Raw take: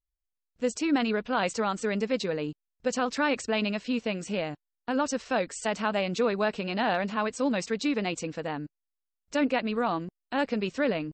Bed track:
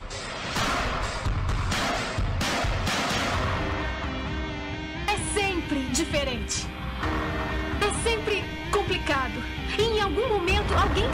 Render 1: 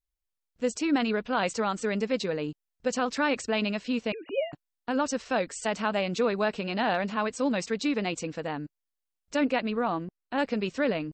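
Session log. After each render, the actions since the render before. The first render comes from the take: 4.12–4.53 s: formants replaced by sine waves; 9.70–10.38 s: low-pass 2.4 kHz 6 dB/octave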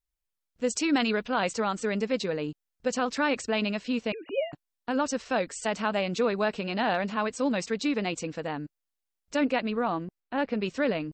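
0.70–1.28 s: treble shelf 2.3 kHz +7 dB; 10.20–10.62 s: distance through air 180 m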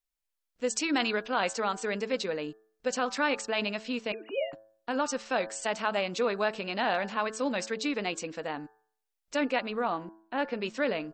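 peaking EQ 78 Hz -15 dB 2.5 oct; de-hum 109.5 Hz, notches 16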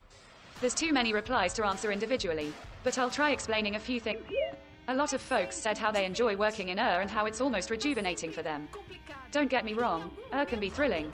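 add bed track -21 dB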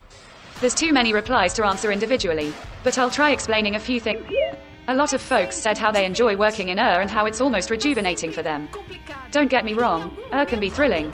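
trim +10 dB

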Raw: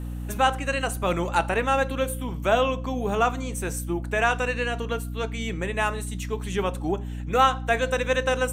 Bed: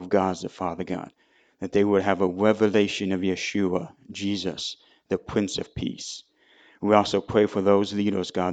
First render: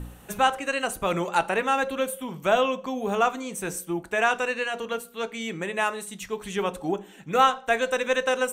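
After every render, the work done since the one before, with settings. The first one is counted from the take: de-hum 60 Hz, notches 9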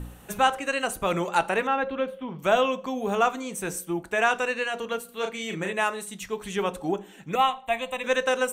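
1.67–2.39 s: distance through air 290 m; 5.05–5.73 s: doubling 37 ms -4.5 dB; 7.35–8.04 s: static phaser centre 1.5 kHz, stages 6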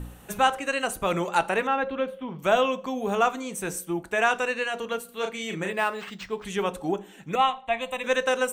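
5.70–6.45 s: decimation joined by straight lines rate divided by 4×; 7.35–7.79 s: low-pass 8.4 kHz -> 4.4 kHz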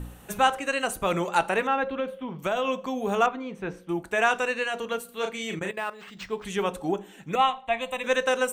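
1.83–2.68 s: compression, threshold -22 dBFS; 3.26–3.89 s: distance through air 320 m; 5.59–6.17 s: level held to a coarse grid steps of 15 dB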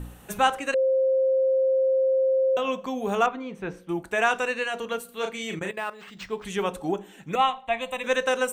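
0.74–2.57 s: bleep 528 Hz -18.5 dBFS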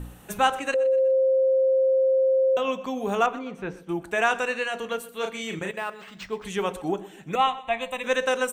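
feedback delay 123 ms, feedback 42%, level -18.5 dB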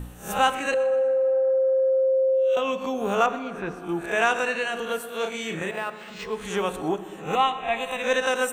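reverse spectral sustain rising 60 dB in 0.37 s; plate-style reverb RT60 3.3 s, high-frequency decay 0.45×, DRR 13 dB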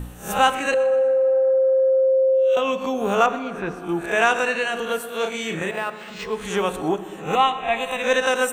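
trim +3.5 dB

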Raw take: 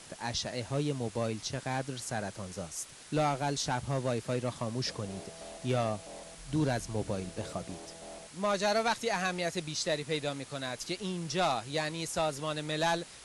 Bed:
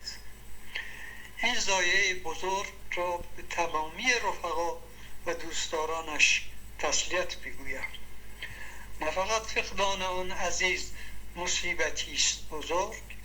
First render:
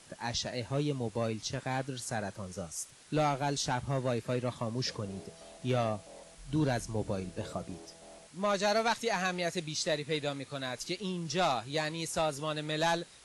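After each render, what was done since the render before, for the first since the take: noise print and reduce 6 dB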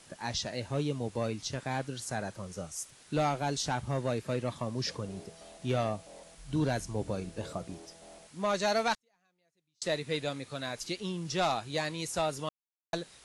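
8.94–9.82 s: inverted gate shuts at -37 dBFS, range -42 dB; 12.49–12.93 s: mute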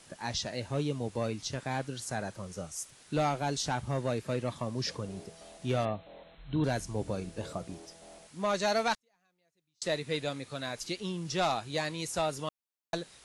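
5.85–6.64 s: brick-wall FIR low-pass 4.2 kHz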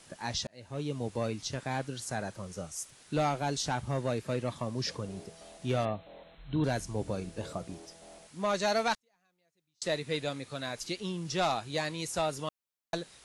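0.47–1.02 s: fade in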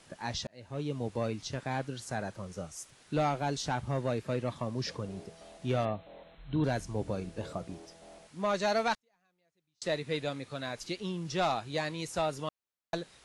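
treble shelf 5.6 kHz -8 dB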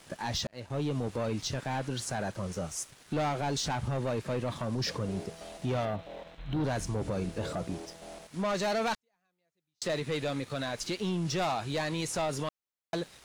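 waveshaping leveller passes 2; peak limiter -25.5 dBFS, peak gain reduction 5 dB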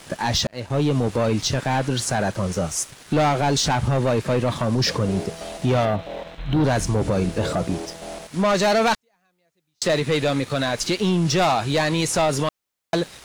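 trim +11.5 dB

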